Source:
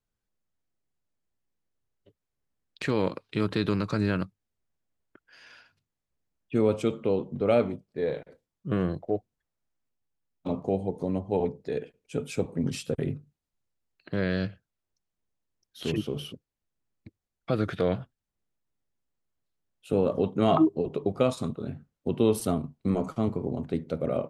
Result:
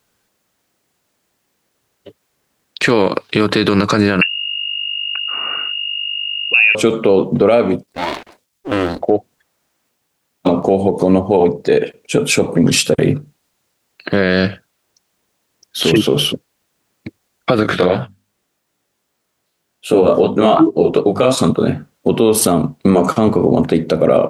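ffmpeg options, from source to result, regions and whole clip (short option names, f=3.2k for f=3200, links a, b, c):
-filter_complex "[0:a]asettb=1/sr,asplit=3[a][b][c];[a]atrim=end=4.214[d];[b]atrim=start=4.21:end=6.75,asetpts=PTS-STARTPTS,afade=t=in:d=0.004:c=qsin,afade=t=out:st=2.536:d=0.004:c=qsin,aeval=exprs='val(0)+0.00501*(sin(2*PI*50*n/s)+sin(2*PI*2*50*n/s)/2+sin(2*PI*3*50*n/s)/3+sin(2*PI*4*50*n/s)/4+sin(2*PI*5*50*n/s)/5)':c=same,lowpass=f=2.5k:t=q:w=0.5098,lowpass=f=2.5k:t=q:w=0.6013,lowpass=f=2.5k:t=q:w=0.9,lowpass=f=2.5k:t=q:w=2.563,afreqshift=-2900[e];[c]atrim=start=6.746[f];[d][e]acrossfade=d=0.004:c1=hsin:c2=qsin[g];[g][f]acrossfade=d=0.004:c1=qsin:c2=hsin,asettb=1/sr,asplit=3[h][i][j];[h]atrim=end=7.834[k];[i]atrim=start=7.83:end=9.01,asetpts=PTS-STARTPTS,afade=t=in:d=0.004:c=qsin,afade=t=out:st=1.176:d=0.004:c=qsin,equalizer=f=560:w=0.34:g=-13,aeval=exprs='abs(val(0))':c=same[l];[j]atrim=start=9.006[m];[k][l]acrossfade=d=0.004:c1=hsin:c2=qsin[n];[n][m]acrossfade=d=0.004:c1=qsin:c2=hsin,asettb=1/sr,asplit=3[o][p][q];[o]atrim=end=17.634[r];[p]atrim=start=17.63:end=21.35,asetpts=PTS-STARTPTS,afade=t=in:d=0.004:c=qsin,afade=t=out:st=3.716:d=0.004:c=qsin,bandreject=f=50:t=h:w=6,bandreject=f=100:t=h:w=6,bandreject=f=150:t=h:w=6,bandreject=f=200:t=h:w=6,bandreject=f=250:t=h:w=6,flanger=delay=16.5:depth=7:speed=2.6[s];[q]atrim=start=21.346[t];[r][s]acrossfade=d=0.004:c1=hsin:c2=qsin[u];[u][t]acrossfade=d=0.004:c1=qsin:c2=hsin,highpass=f=320:p=1,acompressor=threshold=-28dB:ratio=6,alimiter=level_in=26dB:limit=-1dB:release=50:level=0:latency=1,volume=-1dB"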